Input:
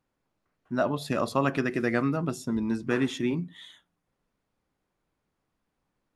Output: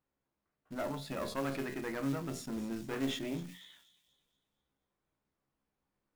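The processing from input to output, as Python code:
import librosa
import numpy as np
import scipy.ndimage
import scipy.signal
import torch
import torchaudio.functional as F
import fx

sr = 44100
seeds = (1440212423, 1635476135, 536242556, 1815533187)

p1 = fx.diode_clip(x, sr, knee_db=-27.0)
p2 = fx.high_shelf(p1, sr, hz=4700.0, db=-6.0)
p3 = fx.hum_notches(p2, sr, base_hz=60, count=4)
p4 = fx.rider(p3, sr, range_db=10, speed_s=0.5)
p5 = fx.comb_fb(p4, sr, f0_hz=68.0, decay_s=0.24, harmonics='all', damping=0.0, mix_pct=80)
p6 = fx.quant_float(p5, sr, bits=2)
p7 = p6 + fx.echo_wet_highpass(p6, sr, ms=240, feedback_pct=42, hz=4300.0, wet_db=-8.0, dry=0)
p8 = fx.sustainer(p7, sr, db_per_s=84.0)
y = F.gain(torch.from_numpy(p8), -1.5).numpy()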